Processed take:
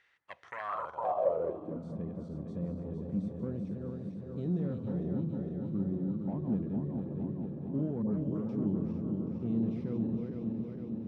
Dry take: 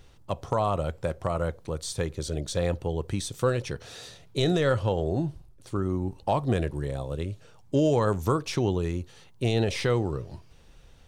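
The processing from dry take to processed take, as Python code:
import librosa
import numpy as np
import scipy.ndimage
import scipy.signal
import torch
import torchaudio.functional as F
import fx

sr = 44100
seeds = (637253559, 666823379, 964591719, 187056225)

p1 = fx.reverse_delay_fb(x, sr, ms=229, feedback_pct=80, wet_db=-5.0)
p2 = fx.fold_sine(p1, sr, drive_db=8, ceiling_db=-9.5)
p3 = p1 + (p2 * librosa.db_to_amplitude(-5.0))
p4 = fx.dispersion(p3, sr, late='highs', ms=113.0, hz=1200.0, at=(8.02, 8.49))
p5 = fx.echo_swing(p4, sr, ms=1300, ratio=1.5, feedback_pct=54, wet_db=-15.5)
p6 = fx.filter_sweep_bandpass(p5, sr, from_hz=1900.0, to_hz=210.0, start_s=0.54, end_s=1.87, q=5.5)
y = p6 * librosa.db_to_amplitude(-5.5)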